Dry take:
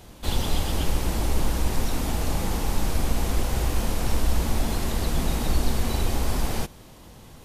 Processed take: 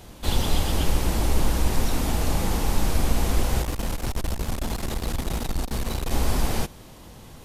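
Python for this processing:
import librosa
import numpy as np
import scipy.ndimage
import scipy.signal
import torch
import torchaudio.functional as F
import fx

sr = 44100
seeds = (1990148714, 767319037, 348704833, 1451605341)

y = fx.tube_stage(x, sr, drive_db=22.0, bias=0.75, at=(3.62, 6.11))
y = y * 10.0 ** (2.0 / 20.0)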